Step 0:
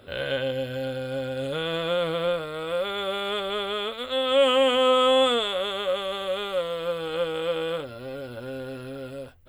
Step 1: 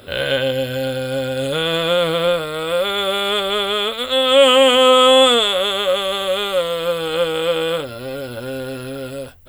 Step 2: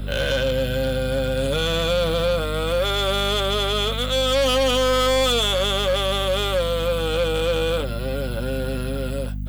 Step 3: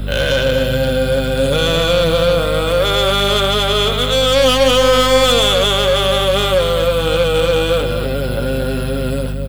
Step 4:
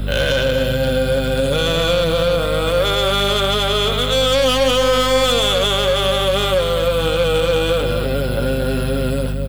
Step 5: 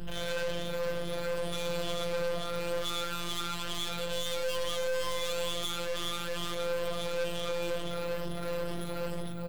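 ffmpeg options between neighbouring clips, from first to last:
-af "highshelf=f=4.5k:g=9.5,volume=8dB"
-filter_complex "[0:a]aeval=exprs='val(0)+0.0501*(sin(2*PI*50*n/s)+sin(2*PI*2*50*n/s)/2+sin(2*PI*3*50*n/s)/3+sin(2*PI*4*50*n/s)/4+sin(2*PI*5*50*n/s)/5)':c=same,acrossover=split=120[a][b];[b]asoftclip=type=tanh:threshold=-17dB[c];[a][c]amix=inputs=2:normalize=0"
-filter_complex "[0:a]asplit=2[a][b];[b]adelay=233.2,volume=-6dB,highshelf=f=4k:g=-5.25[c];[a][c]amix=inputs=2:normalize=0,volume=6.5dB"
-af "alimiter=limit=-9dB:level=0:latency=1:release=136"
-af "afftfilt=real='re*pow(10,13/40*sin(2*PI*(1.3*log(max(b,1)*sr/1024/100)/log(2)-(2.2)*(pts-256)/sr)))':imag='im*pow(10,13/40*sin(2*PI*(1.3*log(max(b,1)*sr/1024/100)/log(2)-(2.2)*(pts-256)/sr)))':win_size=1024:overlap=0.75,aeval=exprs='(tanh(12.6*val(0)+0.6)-tanh(0.6))/12.6':c=same,afftfilt=real='hypot(re,im)*cos(PI*b)':imag='0':win_size=1024:overlap=0.75,volume=-7.5dB"

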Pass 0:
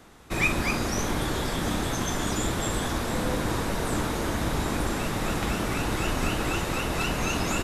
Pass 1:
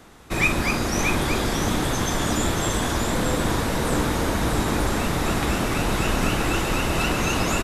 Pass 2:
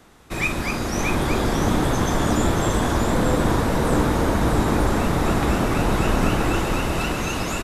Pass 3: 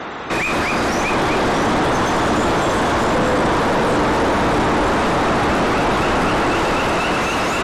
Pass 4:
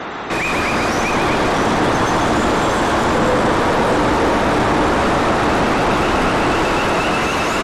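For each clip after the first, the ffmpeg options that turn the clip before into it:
-af "aecho=1:1:630:0.562,volume=3.5dB"
-filter_complex "[0:a]acrossover=split=1500[a][b];[a]dynaudnorm=f=250:g=9:m=7.5dB[c];[c][b]amix=inputs=2:normalize=0,asoftclip=type=hard:threshold=-4.5dB,volume=-3dB"
-filter_complex "[0:a]asplit=2[a][b];[b]highpass=f=720:p=1,volume=39dB,asoftclip=type=tanh:threshold=-7dB[c];[a][c]amix=inputs=2:normalize=0,lowpass=f=1.4k:p=1,volume=-6dB,afftfilt=real='re*gte(hypot(re,im),0.0126)':imag='im*gte(hypot(re,im),0.0126)':win_size=1024:overlap=0.75,volume=-2dB"
-af "areverse,acompressor=mode=upward:threshold=-22dB:ratio=2.5,areverse,aecho=1:1:137:0.562"

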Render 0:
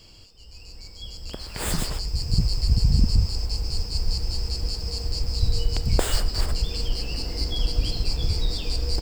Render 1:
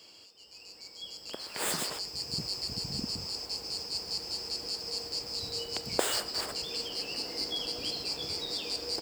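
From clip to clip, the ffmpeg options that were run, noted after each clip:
-af "highpass=330,volume=-2dB"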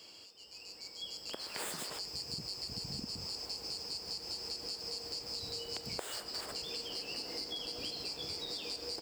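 -af "acompressor=threshold=-37dB:ratio=12"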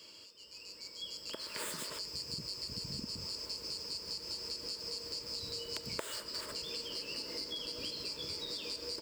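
-filter_complex "[0:a]asplit=2[a][b];[b]acrusher=bits=3:mix=0:aa=0.000001,volume=-6dB[c];[a][c]amix=inputs=2:normalize=0,asuperstop=centerf=760:order=12:qfactor=4.1"

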